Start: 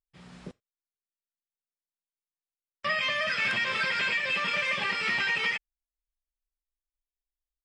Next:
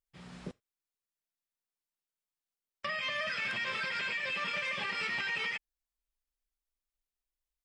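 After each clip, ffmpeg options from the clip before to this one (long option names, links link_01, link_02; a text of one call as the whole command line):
ffmpeg -i in.wav -af "alimiter=level_in=2dB:limit=-24dB:level=0:latency=1:release=218,volume=-2dB" out.wav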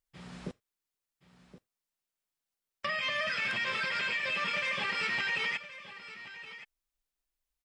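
ffmpeg -i in.wav -af "aecho=1:1:1071:0.188,volume=2.5dB" out.wav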